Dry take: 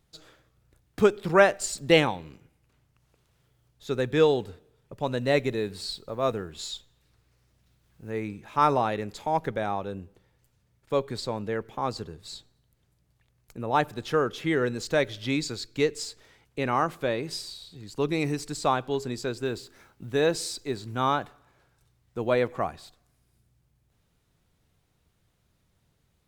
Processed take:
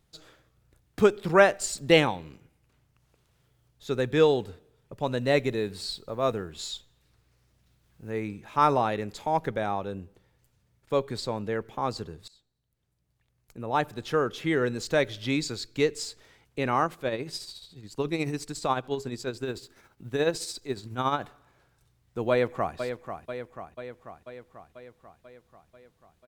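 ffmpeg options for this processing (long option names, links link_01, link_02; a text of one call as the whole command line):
ffmpeg -i in.wav -filter_complex "[0:a]asplit=3[link_01][link_02][link_03];[link_01]afade=type=out:start_time=16.84:duration=0.02[link_04];[link_02]tremolo=f=14:d=0.54,afade=type=in:start_time=16.84:duration=0.02,afade=type=out:start_time=21.2:duration=0.02[link_05];[link_03]afade=type=in:start_time=21.2:duration=0.02[link_06];[link_04][link_05][link_06]amix=inputs=3:normalize=0,asplit=2[link_07][link_08];[link_08]afade=type=in:start_time=22.3:duration=0.01,afade=type=out:start_time=22.76:duration=0.01,aecho=0:1:490|980|1470|1960|2450|2940|3430|3920|4410:0.375837|0.244294|0.158791|0.103214|0.0670893|0.0436081|0.0283452|0.0184244|0.0119759[link_09];[link_07][link_09]amix=inputs=2:normalize=0,asplit=2[link_10][link_11];[link_10]atrim=end=12.28,asetpts=PTS-STARTPTS,afade=type=out:start_time=12.276:duration=0.004:curve=hsin:silence=0.0794328[link_12];[link_11]atrim=start=12.28,asetpts=PTS-STARTPTS,afade=type=in:duration=2.77:curve=qsin:silence=0.0794328[link_13];[link_12][link_13]concat=n=2:v=0:a=1" out.wav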